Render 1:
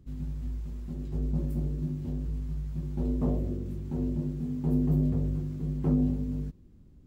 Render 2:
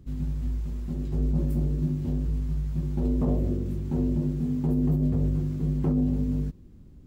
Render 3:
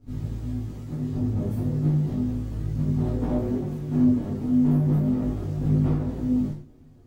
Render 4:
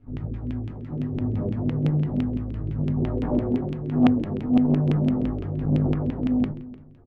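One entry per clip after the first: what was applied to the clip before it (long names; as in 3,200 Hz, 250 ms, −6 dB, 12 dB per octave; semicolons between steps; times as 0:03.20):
brickwall limiter −22.5 dBFS, peak gain reduction 7.5 dB; level +5.5 dB
lower of the sound and its delayed copy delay 8 ms; reverb whose tail is shaped and stops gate 150 ms falling, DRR −5 dB; micro pitch shift up and down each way 12 cents
auto-filter low-pass saw down 5.9 Hz 270–2,900 Hz; single-tap delay 301 ms −19 dB; saturating transformer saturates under 320 Hz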